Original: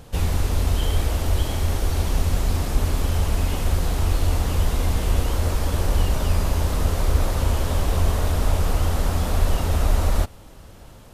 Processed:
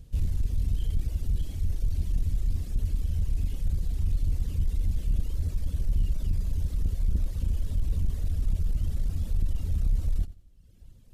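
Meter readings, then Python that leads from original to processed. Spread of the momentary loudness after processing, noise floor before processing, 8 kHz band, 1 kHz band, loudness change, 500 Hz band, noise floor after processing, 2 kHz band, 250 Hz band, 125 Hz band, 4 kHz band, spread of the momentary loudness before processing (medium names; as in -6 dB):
2 LU, -44 dBFS, -18.5 dB, -30.5 dB, -7.5 dB, -23.0 dB, -53 dBFS, -24.0 dB, -12.0 dB, -7.5 dB, -20.0 dB, 2 LU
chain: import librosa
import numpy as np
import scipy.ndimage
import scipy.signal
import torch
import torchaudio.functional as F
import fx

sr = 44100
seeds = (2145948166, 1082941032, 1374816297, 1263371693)

p1 = fx.dereverb_blind(x, sr, rt60_s=1.2)
p2 = fx.tone_stack(p1, sr, knobs='10-0-1')
p3 = fx.notch(p2, sr, hz=1400.0, q=25.0)
p4 = 10.0 ** (-26.0 / 20.0) * np.tanh(p3 / 10.0 ** (-26.0 / 20.0))
p5 = p4 + fx.echo_feedback(p4, sr, ms=88, feedback_pct=28, wet_db=-16.5, dry=0)
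y = p5 * 10.0 ** (7.0 / 20.0)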